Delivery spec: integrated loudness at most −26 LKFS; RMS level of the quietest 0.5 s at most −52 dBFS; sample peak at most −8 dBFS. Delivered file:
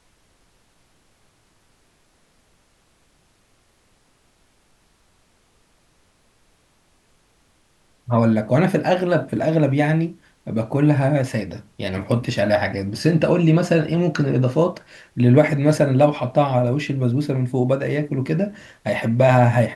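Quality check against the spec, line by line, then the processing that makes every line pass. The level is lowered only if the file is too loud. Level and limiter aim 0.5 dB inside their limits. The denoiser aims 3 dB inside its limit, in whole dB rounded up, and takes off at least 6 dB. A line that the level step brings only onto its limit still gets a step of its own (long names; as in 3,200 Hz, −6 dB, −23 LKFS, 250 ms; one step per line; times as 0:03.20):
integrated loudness −19.5 LKFS: out of spec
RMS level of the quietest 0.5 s −60 dBFS: in spec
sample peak −2.5 dBFS: out of spec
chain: level −7 dB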